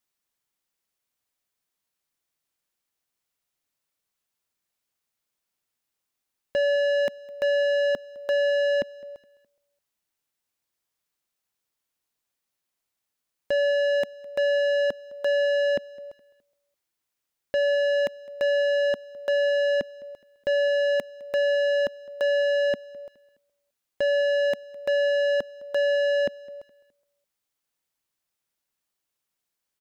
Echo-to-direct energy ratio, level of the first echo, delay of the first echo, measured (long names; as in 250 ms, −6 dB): −22.0 dB, −22.5 dB, 209 ms